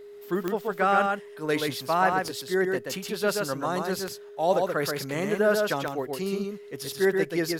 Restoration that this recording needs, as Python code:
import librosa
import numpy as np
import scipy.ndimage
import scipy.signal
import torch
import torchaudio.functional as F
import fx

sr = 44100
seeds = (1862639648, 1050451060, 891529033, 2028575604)

y = fx.fix_declick_ar(x, sr, threshold=10.0)
y = fx.notch(y, sr, hz=410.0, q=30.0)
y = fx.fix_echo_inverse(y, sr, delay_ms=129, level_db=-4.0)